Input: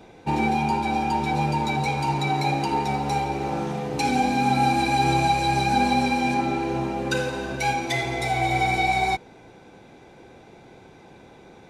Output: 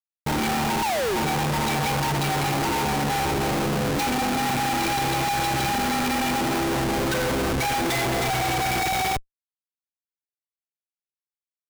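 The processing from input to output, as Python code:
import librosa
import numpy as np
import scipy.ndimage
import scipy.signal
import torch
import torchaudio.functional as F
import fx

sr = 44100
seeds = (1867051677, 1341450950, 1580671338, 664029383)

y = fx.spec_paint(x, sr, seeds[0], shape='fall', start_s=0.82, length_s=0.35, low_hz=340.0, high_hz=970.0, level_db=-17.0)
y = fx.schmitt(y, sr, flips_db=-33.5)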